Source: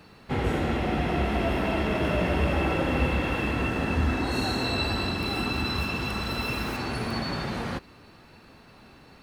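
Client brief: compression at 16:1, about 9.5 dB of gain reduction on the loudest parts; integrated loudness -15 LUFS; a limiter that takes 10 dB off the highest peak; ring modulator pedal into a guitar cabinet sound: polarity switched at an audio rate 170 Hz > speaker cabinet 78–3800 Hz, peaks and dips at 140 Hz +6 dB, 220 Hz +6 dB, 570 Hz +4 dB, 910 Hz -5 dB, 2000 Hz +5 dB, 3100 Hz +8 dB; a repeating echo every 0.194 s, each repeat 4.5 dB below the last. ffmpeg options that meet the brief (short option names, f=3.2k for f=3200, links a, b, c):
-af "acompressor=threshold=-29dB:ratio=16,alimiter=level_in=6.5dB:limit=-24dB:level=0:latency=1,volume=-6.5dB,aecho=1:1:194|388|582|776|970|1164|1358|1552|1746:0.596|0.357|0.214|0.129|0.0772|0.0463|0.0278|0.0167|0.01,aeval=exprs='val(0)*sgn(sin(2*PI*170*n/s))':c=same,highpass=78,equalizer=f=140:t=q:w=4:g=6,equalizer=f=220:t=q:w=4:g=6,equalizer=f=570:t=q:w=4:g=4,equalizer=f=910:t=q:w=4:g=-5,equalizer=f=2k:t=q:w=4:g=5,equalizer=f=3.1k:t=q:w=4:g=8,lowpass=f=3.8k:w=0.5412,lowpass=f=3.8k:w=1.3066,volume=20dB"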